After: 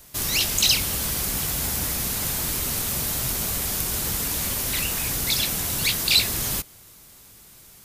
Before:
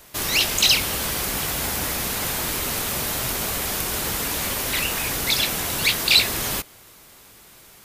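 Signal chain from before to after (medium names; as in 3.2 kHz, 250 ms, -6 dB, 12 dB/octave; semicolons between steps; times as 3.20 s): tone controls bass +8 dB, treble +7 dB; trim -6 dB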